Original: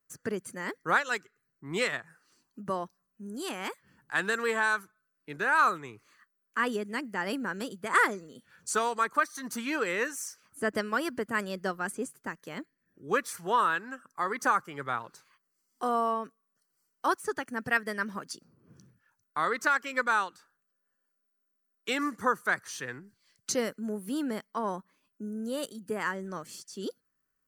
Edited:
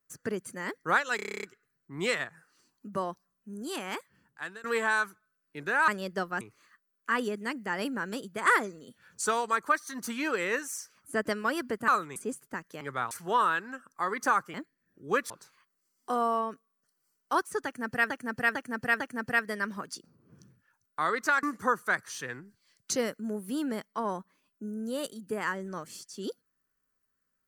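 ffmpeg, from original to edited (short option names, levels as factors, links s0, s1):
-filter_complex "[0:a]asplit=23[s0][s1][s2][s3][s4][s5][s6][s7][s8][s9][s10][s11][s12][s13][s14][s15][s16][s17][s18][s19][s20][s21][s22];[s0]atrim=end=1.192[s23];[s1]atrim=start=1.158:end=1.192[s24];[s2]atrim=start=1.158:end=1.192[s25];[s3]atrim=start=1.158:end=1.192[s26];[s4]atrim=start=1.158:end=1.192[s27];[s5]atrim=start=1.158:end=1.192[s28];[s6]atrim=start=1.158:end=1.192[s29];[s7]atrim=start=1.158:end=1.192[s30];[s8]atrim=start=1.158:end=1.192[s31];[s9]atrim=start=1.158:end=4.37,asetpts=PTS-STARTPTS,afade=t=out:st=2.512:d=0.7:silence=0.0630957[s32];[s10]atrim=start=4.37:end=5.612,asetpts=PTS-STARTPTS,afade=t=in:d=0.004:c=hsin:silence=0.0630957[s33];[s11]atrim=start=11.358:end=11.892[s34];[s12]atrim=start=5.888:end=11.362[s35];[s13]atrim=start=5.608:end=5.892[s36];[s14]atrim=start=11.888:end=12.542[s37];[s15]atrim=start=14.728:end=15.032[s38];[s16]atrim=start=13.298:end=14.732[s39];[s17]atrim=start=12.538:end=13.302[s40];[s18]atrim=start=15.028:end=17.832[s41];[s19]atrim=start=17.378:end=17.832[s42];[s20]atrim=start=17.378:end=17.832[s43];[s21]atrim=start=17.378:end=19.812[s44];[s22]atrim=start=22.018[s45];[s23][s24]acrossfade=d=0.004:c1=hsin:c2=hsin[s46];[s46][s25]acrossfade=d=0.004:c1=hsin:c2=hsin[s47];[s47][s26]acrossfade=d=0.004:c1=hsin:c2=hsin[s48];[s48][s27]acrossfade=d=0.004:c1=hsin:c2=hsin[s49];[s49][s28]acrossfade=d=0.004:c1=hsin:c2=hsin[s50];[s50][s29]acrossfade=d=0.004:c1=hsin:c2=hsin[s51];[s51][s30]acrossfade=d=0.004:c1=hsin:c2=hsin[s52];[s52][s31]acrossfade=d=0.004:c1=hsin:c2=hsin[s53];[s32][s33]concat=n=2:v=0:a=1[s54];[s53][s54]acrossfade=d=0.004:c1=hsin:c2=hsin[s55];[s55][s34]acrossfade=d=0.004:c1=hsin:c2=hsin[s56];[s56][s35]acrossfade=d=0.004:c1=hsin:c2=hsin[s57];[s57][s36]acrossfade=d=0.004:c1=hsin:c2=hsin[s58];[s58][s37]acrossfade=d=0.004:c1=hsin:c2=hsin[s59];[s59][s38]acrossfade=d=0.004:c1=hsin:c2=hsin[s60];[s60][s39]acrossfade=d=0.004:c1=hsin:c2=hsin[s61];[s61][s40]acrossfade=d=0.004:c1=hsin:c2=hsin[s62];[s62][s41]acrossfade=d=0.004:c1=hsin:c2=hsin[s63];[s63][s42]acrossfade=d=0.004:c1=hsin:c2=hsin[s64];[s64][s43]acrossfade=d=0.004:c1=hsin:c2=hsin[s65];[s65][s44]acrossfade=d=0.004:c1=hsin:c2=hsin[s66];[s66][s45]acrossfade=d=0.004:c1=hsin:c2=hsin"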